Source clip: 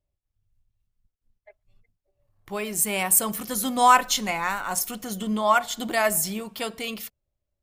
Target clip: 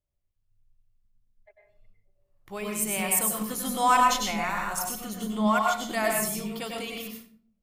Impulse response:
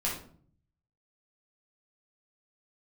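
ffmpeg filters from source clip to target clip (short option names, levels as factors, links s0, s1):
-filter_complex "[0:a]asplit=2[s0][s1];[1:a]atrim=start_sample=2205,adelay=95[s2];[s1][s2]afir=irnorm=-1:irlink=0,volume=0.501[s3];[s0][s3]amix=inputs=2:normalize=0,volume=0.501"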